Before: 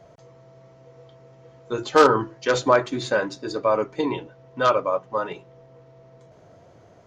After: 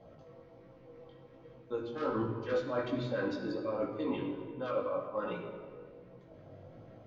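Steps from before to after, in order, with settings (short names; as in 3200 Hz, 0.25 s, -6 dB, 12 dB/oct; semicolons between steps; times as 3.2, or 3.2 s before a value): reverse; compressor 8:1, threshold -28 dBFS, peak gain reduction 18.5 dB; reverse; LFO notch sine 5.9 Hz 740–2100 Hz; air absorption 250 m; reverb RT60 1.7 s, pre-delay 4 ms, DRR 1 dB; chorus 1.3 Hz, delay 17 ms, depth 3.7 ms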